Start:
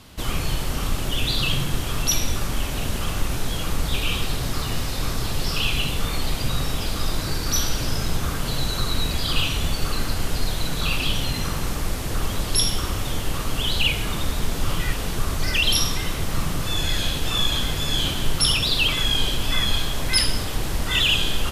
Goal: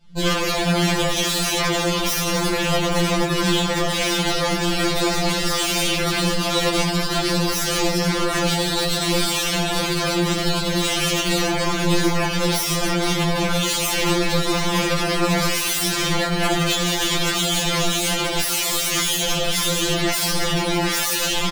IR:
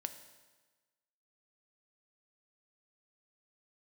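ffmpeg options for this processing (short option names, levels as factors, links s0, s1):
-filter_complex "[0:a]lowpass=7000,equalizer=f=78:t=o:w=2.3:g=13,bandreject=f=60:t=h:w=6,bandreject=f=120:t=h:w=6,bandreject=f=180:t=h:w=6,bandreject=f=240:t=h:w=6,bandreject=f=300:t=h:w=6,bandreject=f=360:t=h:w=6,bandreject=f=420:t=h:w=6,bandreject=f=480:t=h:w=6,bandreject=f=540:t=h:w=6,aecho=1:1:16|52:0.631|0.596,asplit=2[s0][s1];[s1]acontrast=27,volume=1[s2];[s0][s2]amix=inputs=2:normalize=0,aeval=exprs='(mod(2.66*val(0)+1,2)-1)/2.66':c=same,afftdn=nr=19:nf=-20,flanger=delay=19:depth=4:speed=1.8,afftfilt=real='re*2.83*eq(mod(b,8),0)':imag='im*2.83*eq(mod(b,8),0)':win_size=2048:overlap=0.75"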